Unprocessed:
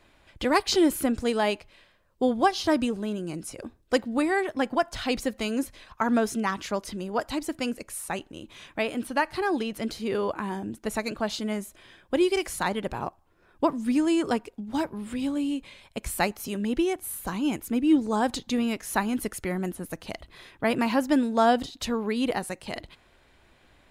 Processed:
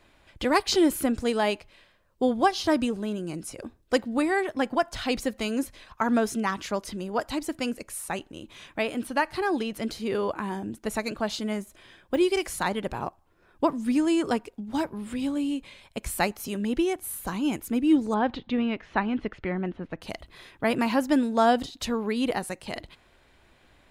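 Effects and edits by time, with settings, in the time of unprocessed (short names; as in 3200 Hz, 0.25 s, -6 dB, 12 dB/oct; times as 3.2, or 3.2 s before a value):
11.61–12.2 de-esser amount 100%
18.14–20.02 LPF 3300 Hz 24 dB/oct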